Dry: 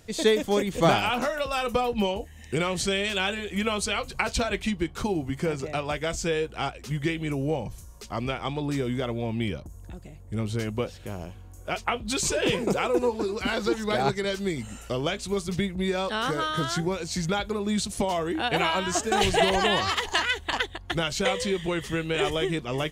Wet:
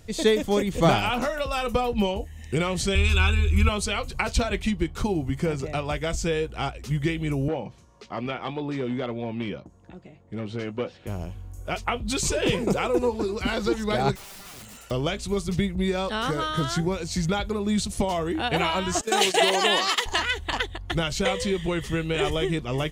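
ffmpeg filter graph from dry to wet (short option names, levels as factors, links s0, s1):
-filter_complex "[0:a]asettb=1/sr,asplit=3[s0][s1][s2];[s0]atrim=end=2.954[s3];[s1]atrim=start=2.95:end=3.69,asetpts=PTS-STARTPTS,afade=t=in:d=0.004:c=qsin,afade=t=out:st=0.736:d=0.004:c=qsin,lowshelf=f=130:t=q:w=3:g=10,aecho=1:1:0.8:0.82,atrim=end_sample=32634[s4];[s2]atrim=start=3.686[s5];[s3][s4]acrossfade=d=0.004:c1=hsin:c2=qsin[s6];[s6][s5]acrossfade=d=0.004:c1=qsin:c2=hsin,asettb=1/sr,asplit=3[s7][s8][s9];[s7]atrim=end=7.484[s10];[s8]atrim=start=7.48:end=11.07,asetpts=PTS-STARTPTS,afade=t=in:d=0.004:c=qsin,afade=t=out:st=3.586:d=0.004:c=qsin,asplit=2[s11][s12];[s12]adelay=16,volume=0.251[s13];[s11][s13]amix=inputs=2:normalize=0,atrim=end_sample=158319,volume=11.9,asoftclip=hard,volume=0.0841,highpass=210,lowpass=3600[s14];[s9]atrim=start=11.066[s15];[s10][s14]acrossfade=d=0.004:c1=hsin:c2=qsin[s16];[s16][s15]acrossfade=d=0.004:c1=qsin:c2=hsin,asettb=1/sr,asplit=3[s17][s18][s19];[s17]atrim=end=14.154[s20];[s18]atrim=start=14.15:end=14.91,asetpts=PTS-STARTPTS,afade=t=in:d=0.004:c=qsin,afade=t=out:st=0.756:d=0.004:c=qsin,highpass=f=430:p=1,acompressor=threshold=0.0251:ratio=12:attack=3.2:release=140:knee=1:detection=peak,aeval=exprs='(mod(84.1*val(0)+1,2)-1)/84.1':c=same[s21];[s19]atrim=start=14.906[s22];[s20][s21]acrossfade=d=0.004:c1=hsin:c2=qsin[s23];[s23][s22]acrossfade=d=0.004:c1=qsin:c2=hsin,asettb=1/sr,asplit=3[s24][s25][s26];[s24]atrim=end=19.014[s27];[s25]atrim=start=19.01:end=20.06,asetpts=PTS-STARTPTS,afade=t=in:d=0.004:c=qsin,afade=t=out:st=1.046:d=0.004:c=qsin,highpass=f=240:w=0.5412,highpass=f=240:w=1.3066,agate=range=0.251:threshold=0.0282:ratio=16:release=100:detection=peak,highshelf=f=3000:g=7.5[s28];[s26]atrim=start=20.056[s29];[s27][s28]acrossfade=d=0.004:c1=hsin:c2=qsin[s30];[s30][s29]acrossfade=d=0.004:c1=qsin:c2=hsin,lowshelf=f=130:g=9,bandreject=f=1600:w=24"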